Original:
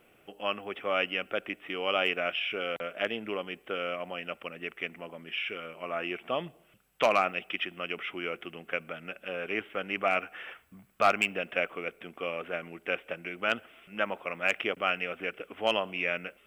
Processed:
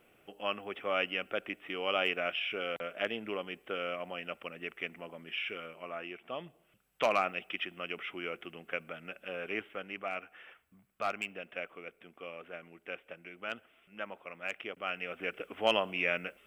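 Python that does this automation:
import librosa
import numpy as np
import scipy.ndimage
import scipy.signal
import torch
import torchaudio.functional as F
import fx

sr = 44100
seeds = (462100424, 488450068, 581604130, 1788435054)

y = fx.gain(x, sr, db=fx.line((5.61, -3.0), (6.16, -10.0), (7.1, -4.0), (9.56, -4.0), (10.04, -10.5), (14.72, -10.5), (15.38, -0.5)))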